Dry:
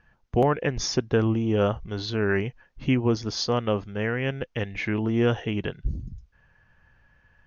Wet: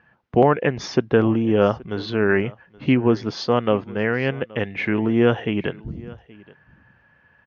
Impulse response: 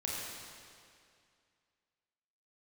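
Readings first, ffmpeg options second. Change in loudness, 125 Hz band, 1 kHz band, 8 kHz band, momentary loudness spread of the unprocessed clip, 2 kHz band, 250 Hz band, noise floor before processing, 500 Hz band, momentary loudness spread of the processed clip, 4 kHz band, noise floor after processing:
+5.0 dB, +1.5 dB, +6.0 dB, can't be measured, 9 LU, +5.5 dB, +5.5 dB, −65 dBFS, +6.0 dB, 11 LU, 0.0 dB, −59 dBFS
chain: -filter_complex "[0:a]highpass=140,lowpass=3000,asplit=2[link_01][link_02];[link_02]aecho=0:1:825:0.075[link_03];[link_01][link_03]amix=inputs=2:normalize=0,volume=6dB"

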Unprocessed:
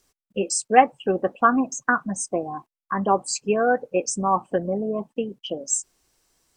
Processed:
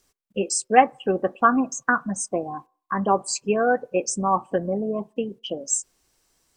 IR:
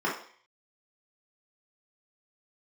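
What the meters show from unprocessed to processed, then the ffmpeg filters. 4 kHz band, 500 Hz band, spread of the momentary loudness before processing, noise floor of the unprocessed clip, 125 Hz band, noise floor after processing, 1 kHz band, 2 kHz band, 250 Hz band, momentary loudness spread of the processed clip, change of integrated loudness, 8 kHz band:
0.0 dB, −0.5 dB, 12 LU, below −85 dBFS, +0.5 dB, −76 dBFS, −0.5 dB, 0.0 dB, 0.0 dB, 12 LU, 0.0 dB, 0.0 dB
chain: -filter_complex "[0:a]asplit=2[link_01][link_02];[1:a]atrim=start_sample=2205,lowpass=2400[link_03];[link_02][link_03]afir=irnorm=-1:irlink=0,volume=-35dB[link_04];[link_01][link_04]amix=inputs=2:normalize=0"

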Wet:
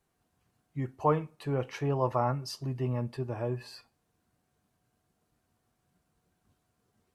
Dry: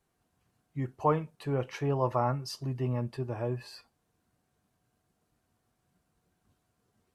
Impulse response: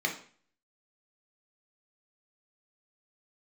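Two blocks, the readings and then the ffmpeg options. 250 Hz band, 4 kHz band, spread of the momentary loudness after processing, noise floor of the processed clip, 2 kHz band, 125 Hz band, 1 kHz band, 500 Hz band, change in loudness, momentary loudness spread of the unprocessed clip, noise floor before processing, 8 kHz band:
0.0 dB, 0.0 dB, 10 LU, −78 dBFS, 0.0 dB, 0.0 dB, 0.0 dB, 0.0 dB, 0.0 dB, 10 LU, −78 dBFS, 0.0 dB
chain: -filter_complex "[0:a]asplit=2[link_01][link_02];[1:a]atrim=start_sample=2205,adelay=12[link_03];[link_02][link_03]afir=irnorm=-1:irlink=0,volume=-27dB[link_04];[link_01][link_04]amix=inputs=2:normalize=0"

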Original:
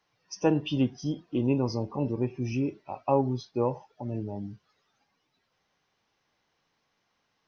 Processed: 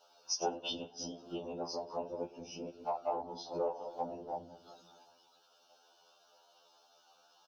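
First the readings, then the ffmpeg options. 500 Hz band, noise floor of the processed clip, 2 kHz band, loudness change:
−8.0 dB, −68 dBFS, −11.0 dB, −10.0 dB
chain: -filter_complex "[0:a]asplit=2[link_01][link_02];[link_02]adelay=197,lowpass=frequency=2000:poles=1,volume=-20dB,asplit=2[link_03][link_04];[link_04]adelay=197,lowpass=frequency=2000:poles=1,volume=0.47,asplit=2[link_05][link_06];[link_06]adelay=197,lowpass=frequency=2000:poles=1,volume=0.47,asplit=2[link_07][link_08];[link_08]adelay=197,lowpass=frequency=2000:poles=1,volume=0.47[link_09];[link_01][link_03][link_05][link_07][link_09]amix=inputs=5:normalize=0,asplit=2[link_10][link_11];[link_11]asoftclip=type=tanh:threshold=-21.5dB,volume=-11.5dB[link_12];[link_10][link_12]amix=inputs=2:normalize=0,aecho=1:1:1.4:0.59,alimiter=limit=-17dB:level=0:latency=1:release=498,asuperstop=centerf=2000:order=4:qfactor=1.3,acompressor=threshold=-39dB:ratio=6,highpass=frequency=360:width=0.5412,highpass=frequency=360:width=1.3066,afftfilt=real='hypot(re,im)*cos(2*PI*random(0))':imag='hypot(re,im)*sin(2*PI*random(1))':win_size=512:overlap=0.75,afftfilt=real='re*2*eq(mod(b,4),0)':imag='im*2*eq(mod(b,4),0)':win_size=2048:overlap=0.75,volume=16.5dB"

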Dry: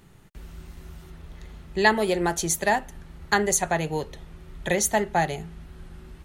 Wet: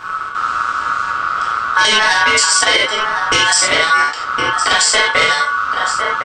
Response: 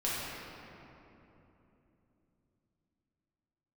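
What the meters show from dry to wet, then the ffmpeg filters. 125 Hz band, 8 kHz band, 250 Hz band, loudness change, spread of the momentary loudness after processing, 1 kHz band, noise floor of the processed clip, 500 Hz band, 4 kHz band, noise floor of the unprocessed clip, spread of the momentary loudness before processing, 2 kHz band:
−3.0 dB, +11.5 dB, −2.5 dB, +11.0 dB, 7 LU, +13.5 dB, −24 dBFS, +3.5 dB, +22.0 dB, −50 dBFS, 15 LU, +16.5 dB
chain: -filter_complex "[0:a]equalizer=frequency=160:width=2:gain=10,aecho=1:1:1059:0.112,aresample=16000,asoftclip=type=tanh:threshold=-18dB,aresample=44100[link_01];[1:a]atrim=start_sample=2205,atrim=end_sample=4410[link_02];[link_01][link_02]afir=irnorm=-1:irlink=0,aeval=exprs='val(0)*sin(2*PI*1300*n/s)':channel_layout=same,acrossover=split=2700[link_03][link_04];[link_03]acompressor=threshold=-35dB:ratio=6[link_05];[link_05][link_04]amix=inputs=2:normalize=0,alimiter=level_in=23dB:limit=-1dB:release=50:level=0:latency=1,volume=-1dB"

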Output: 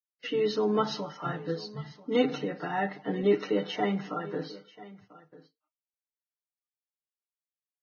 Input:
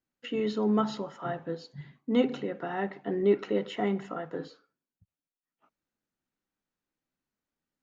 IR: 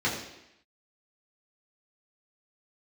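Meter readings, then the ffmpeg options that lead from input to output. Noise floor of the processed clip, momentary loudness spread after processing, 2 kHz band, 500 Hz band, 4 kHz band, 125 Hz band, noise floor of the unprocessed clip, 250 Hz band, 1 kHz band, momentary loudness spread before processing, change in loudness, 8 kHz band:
below −85 dBFS, 15 LU, +3.5 dB, +1.0 dB, +5.0 dB, +1.5 dB, below −85 dBFS, −1.5 dB, +2.5 dB, 13 LU, +0.5 dB, can't be measured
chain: -filter_complex "[0:a]aemphasis=mode=production:type=cd,aecho=1:1:6.6:0.77,aecho=1:1:989:0.112,agate=range=-22dB:threshold=-57dB:ratio=16:detection=peak,asplit=2[link_01][link_02];[1:a]atrim=start_sample=2205,afade=type=out:start_time=0.15:duration=0.01,atrim=end_sample=7056[link_03];[link_02][link_03]afir=irnorm=-1:irlink=0,volume=-29.5dB[link_04];[link_01][link_04]amix=inputs=2:normalize=0" -ar 16000 -c:a libvorbis -b:a 16k

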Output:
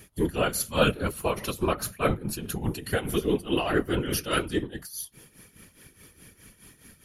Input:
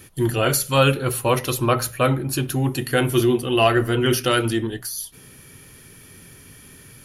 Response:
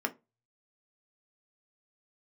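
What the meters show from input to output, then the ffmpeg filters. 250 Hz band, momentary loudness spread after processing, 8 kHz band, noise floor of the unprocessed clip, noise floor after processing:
−6.5 dB, 8 LU, −7.5 dB, −47 dBFS, −61 dBFS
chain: -af "tremolo=f=4.8:d=0.75,afftfilt=real='hypot(re,im)*cos(2*PI*random(0))':imag='hypot(re,im)*sin(2*PI*random(1))':win_size=512:overlap=0.75,volume=2dB"

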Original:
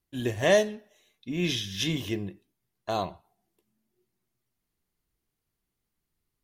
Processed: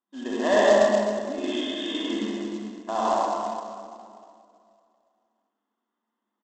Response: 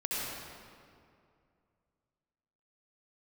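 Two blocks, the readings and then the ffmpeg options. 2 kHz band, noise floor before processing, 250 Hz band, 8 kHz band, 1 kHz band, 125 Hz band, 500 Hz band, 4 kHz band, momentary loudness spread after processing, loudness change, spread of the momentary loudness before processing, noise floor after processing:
+2.5 dB, −83 dBFS, +4.5 dB, −0.5 dB, +10.5 dB, can't be measured, +6.0 dB, +0.5 dB, 17 LU, +3.5 dB, 19 LU, −83 dBFS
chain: -filter_complex "[1:a]atrim=start_sample=2205[link_01];[0:a][link_01]afir=irnorm=-1:irlink=0,afftfilt=real='re*between(b*sr/4096,200,3700)':imag='im*between(b*sr/4096,200,3700)':win_size=4096:overlap=0.75,equalizer=frequency=400:width_type=o:width=0.67:gain=-5,equalizer=frequency=1000:width_type=o:width=0.67:gain=8,equalizer=frequency=2500:width_type=o:width=0.67:gain=-11,aecho=1:1:67|134|201|268:0.299|0.102|0.0345|0.0117,aresample=16000,acrusher=bits=4:mode=log:mix=0:aa=0.000001,aresample=44100,bandreject=frequency=2300:width=8.6"

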